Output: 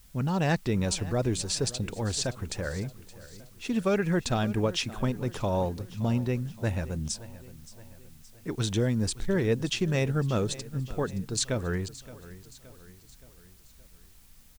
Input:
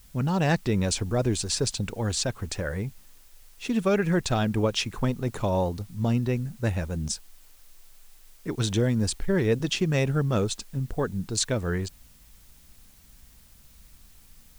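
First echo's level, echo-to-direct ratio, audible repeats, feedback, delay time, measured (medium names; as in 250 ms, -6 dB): -17.5 dB, -16.0 dB, 3, 51%, 571 ms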